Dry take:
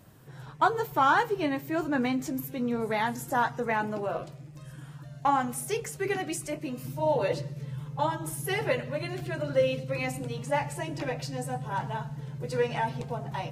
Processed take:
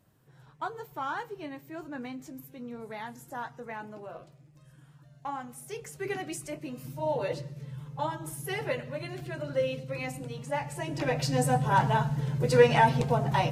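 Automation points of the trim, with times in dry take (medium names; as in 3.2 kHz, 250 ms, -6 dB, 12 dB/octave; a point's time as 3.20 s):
5.56 s -11.5 dB
6.07 s -4 dB
10.63 s -4 dB
11.37 s +8 dB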